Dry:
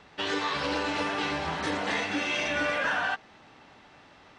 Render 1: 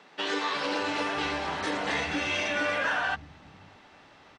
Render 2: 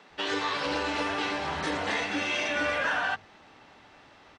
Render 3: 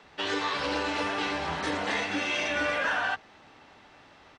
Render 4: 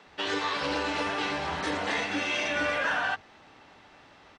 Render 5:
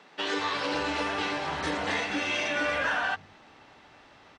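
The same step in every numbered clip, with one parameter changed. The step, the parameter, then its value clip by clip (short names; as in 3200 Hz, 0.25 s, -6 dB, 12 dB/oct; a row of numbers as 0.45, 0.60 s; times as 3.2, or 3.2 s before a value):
bands offset in time, time: 610, 100, 30, 60, 180 ms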